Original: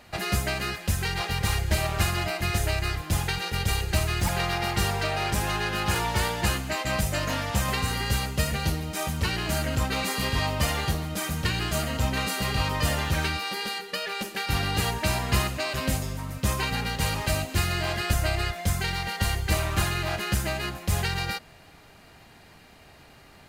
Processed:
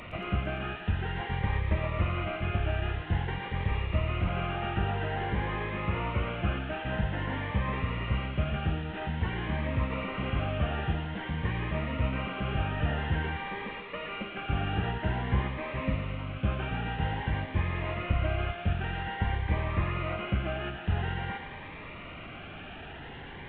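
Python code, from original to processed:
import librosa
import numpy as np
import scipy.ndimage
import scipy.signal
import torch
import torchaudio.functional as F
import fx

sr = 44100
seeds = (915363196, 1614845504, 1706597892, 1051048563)

y = fx.delta_mod(x, sr, bps=16000, step_db=-33.0)
y = fx.echo_thinned(y, sr, ms=114, feedback_pct=79, hz=370.0, wet_db=-10.0)
y = fx.notch_cascade(y, sr, direction='rising', hz=0.5)
y = y * 10.0 ** (-2.5 / 20.0)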